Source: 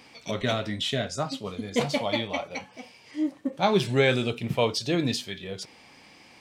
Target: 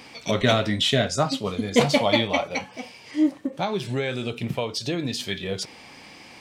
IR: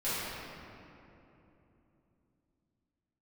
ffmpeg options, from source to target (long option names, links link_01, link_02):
-filter_complex "[0:a]asplit=3[link_01][link_02][link_03];[link_01]afade=type=out:start_time=3.37:duration=0.02[link_04];[link_02]acompressor=threshold=-31dB:ratio=6,afade=type=in:start_time=3.37:duration=0.02,afade=type=out:start_time=5.19:duration=0.02[link_05];[link_03]afade=type=in:start_time=5.19:duration=0.02[link_06];[link_04][link_05][link_06]amix=inputs=3:normalize=0,volume=7dB"